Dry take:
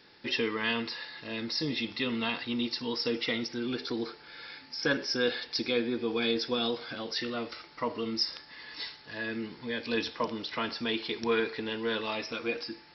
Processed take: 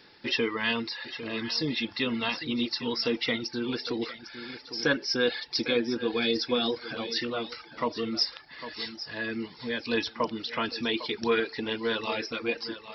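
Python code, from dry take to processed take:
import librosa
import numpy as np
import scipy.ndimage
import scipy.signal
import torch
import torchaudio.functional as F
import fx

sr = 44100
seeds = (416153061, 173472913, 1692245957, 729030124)

y = fx.echo_feedback(x, sr, ms=803, feedback_pct=17, wet_db=-12.0)
y = fx.dereverb_blind(y, sr, rt60_s=0.54)
y = y * 10.0 ** (3.0 / 20.0)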